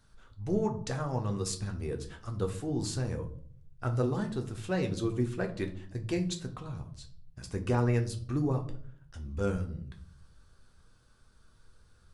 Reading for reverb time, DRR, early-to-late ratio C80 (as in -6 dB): 0.55 s, 3.5 dB, 17.0 dB